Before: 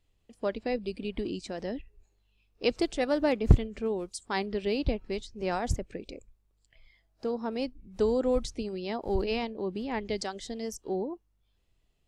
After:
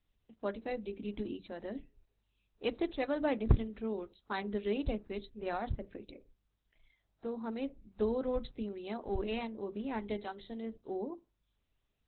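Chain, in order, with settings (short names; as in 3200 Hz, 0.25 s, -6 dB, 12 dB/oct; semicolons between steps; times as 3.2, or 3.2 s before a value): rippled Chebyshev low-pass 5200 Hz, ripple 3 dB; on a send at -13.5 dB: reverb RT60 0.25 s, pre-delay 3 ms; on the sum: gain -4 dB; Opus 8 kbps 48000 Hz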